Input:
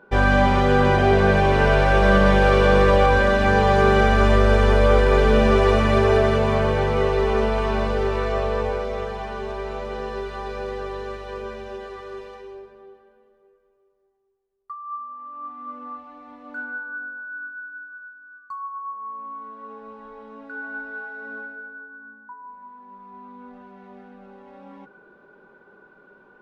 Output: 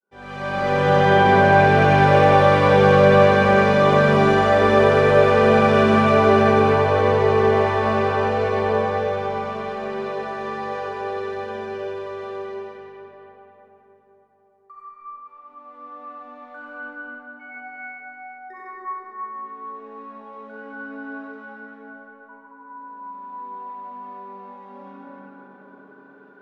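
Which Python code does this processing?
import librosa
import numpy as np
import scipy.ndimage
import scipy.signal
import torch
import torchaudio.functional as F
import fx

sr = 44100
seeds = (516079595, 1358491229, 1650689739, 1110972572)

y = fx.fade_in_head(x, sr, length_s=0.67)
y = scipy.signal.sosfilt(scipy.signal.butter(2, 140.0, 'highpass', fs=sr, output='sos'), y)
y = fx.ring_mod(y, sr, carrier_hz=730.0, at=(17.39, 18.53), fade=0.02)
y = fx.cheby_harmonics(y, sr, harmonics=(7, 8), levels_db=(-45, -36), full_scale_db=-5.5)
y = fx.echo_multitap(y, sr, ms=(95, 311), db=(-4.0, -5.5))
y = fx.rev_freeverb(y, sr, rt60_s=4.3, hf_ratio=0.45, predelay_ms=20, drr_db=-10.0)
y = y * librosa.db_to_amplitude(-9.5)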